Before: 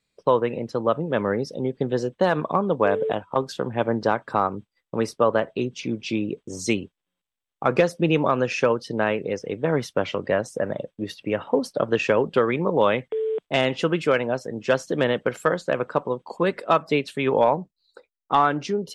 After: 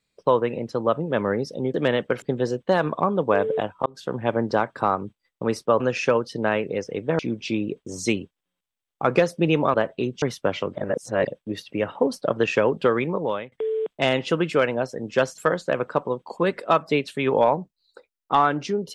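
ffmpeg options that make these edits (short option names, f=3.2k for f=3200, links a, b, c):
-filter_complex "[0:a]asplit=12[a][b][c][d][e][f][g][h][i][j][k][l];[a]atrim=end=1.742[m];[b]atrim=start=14.898:end=15.382[n];[c]atrim=start=1.738:end=3.38,asetpts=PTS-STARTPTS,afade=t=out:st=1.638:d=0.004:c=hsin[o];[d]atrim=start=3.38:end=5.322,asetpts=PTS-STARTPTS,afade=t=in:d=0.28[p];[e]atrim=start=8.348:end=9.742[q];[f]atrim=start=5.798:end=8.352[r];[g]atrim=start=5.318:end=5.802[s];[h]atrim=start=9.738:end=10.272[t];[i]atrim=start=10.268:end=10.792,asetpts=PTS-STARTPTS,areverse[u];[j]atrim=start=10.788:end=13.04,asetpts=PTS-STARTPTS,afade=t=out:st=1.722:d=0.53:silence=0.0841395[v];[k]atrim=start=13.04:end=14.902,asetpts=PTS-STARTPTS,afade=t=in:d=0.004:c=hsin:silence=0.0841395[w];[l]atrim=start=15.378[x];[m][n]acrossfade=d=0.004:c1=hsin:c2=hsin[y];[o][p]concat=n=2:v=0:a=1[z];[y][z]acrossfade=d=0.004:c1=hsin:c2=hsin[aa];[aa][q]acrossfade=d=0.004:c1=hsin:c2=hsin[ab];[ab][r]acrossfade=d=0.004:c1=hsin:c2=hsin[ac];[ac][s]acrossfade=d=0.004:c1=hsin:c2=hsin[ad];[ad][t]acrossfade=d=0.004:c1=hsin:c2=hsin[ae];[ae][u]acrossfade=d=0.004:c1=hsin:c2=hsin[af];[v][w]concat=n=2:v=0:a=1[ag];[af][ag]acrossfade=d=0.004:c1=hsin:c2=hsin[ah];[ah][x]acrossfade=d=0.004:c1=hsin:c2=hsin"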